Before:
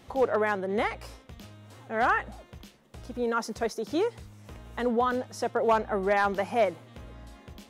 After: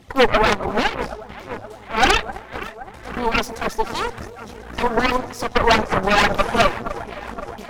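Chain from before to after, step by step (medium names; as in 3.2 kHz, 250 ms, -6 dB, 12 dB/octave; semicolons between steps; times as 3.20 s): 0.64–1.59 s: treble shelf 7.4 kHz -8.5 dB; phaser 1.9 Hz, delay 4.9 ms, feedback 62%; echo whose repeats swap between lows and highs 260 ms, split 840 Hz, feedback 85%, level -11.5 dB; Chebyshev shaper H 8 -7 dB, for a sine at -7 dBFS; trim +1.5 dB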